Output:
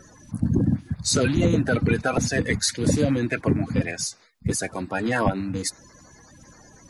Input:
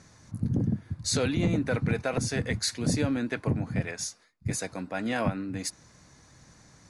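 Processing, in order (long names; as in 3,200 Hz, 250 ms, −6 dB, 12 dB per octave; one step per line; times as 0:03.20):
spectral magnitudes quantised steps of 30 dB
level +6.5 dB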